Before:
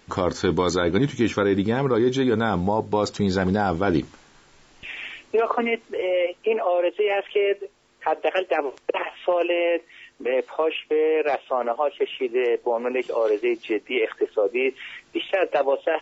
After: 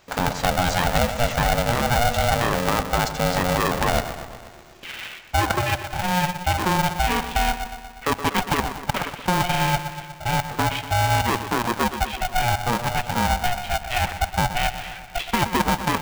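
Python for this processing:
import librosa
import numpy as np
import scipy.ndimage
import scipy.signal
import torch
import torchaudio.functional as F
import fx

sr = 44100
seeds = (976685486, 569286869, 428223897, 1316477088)

y = fx.echo_bbd(x, sr, ms=121, stages=2048, feedback_pct=64, wet_db=-11)
y = y * np.sign(np.sin(2.0 * np.pi * 360.0 * np.arange(len(y)) / sr))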